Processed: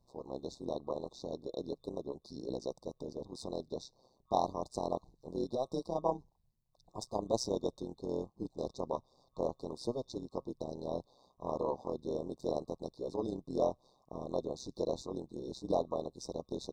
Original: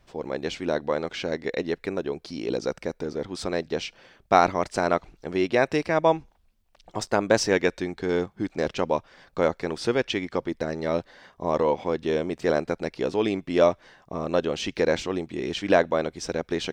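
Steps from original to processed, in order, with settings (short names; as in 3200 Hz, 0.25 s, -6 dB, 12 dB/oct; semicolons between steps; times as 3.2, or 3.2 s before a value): FFT band-reject 1100–3600 Hz; AM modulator 130 Hz, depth 70%; gain -8.5 dB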